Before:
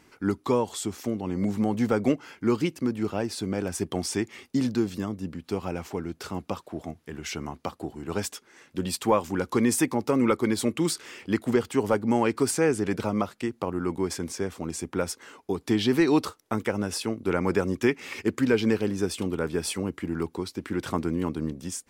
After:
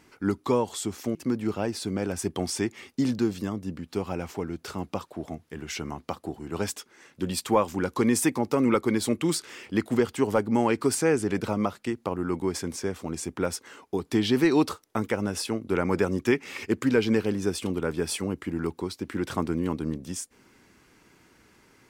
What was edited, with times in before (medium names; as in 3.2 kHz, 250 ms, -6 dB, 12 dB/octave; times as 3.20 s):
1.15–2.71 s: delete